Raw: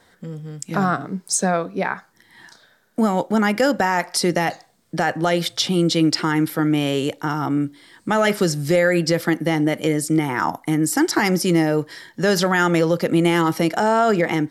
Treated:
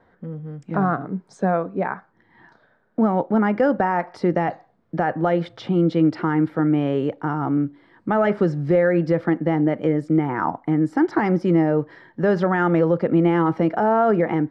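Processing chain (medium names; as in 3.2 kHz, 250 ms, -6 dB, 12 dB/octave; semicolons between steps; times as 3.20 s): low-pass 1.3 kHz 12 dB/octave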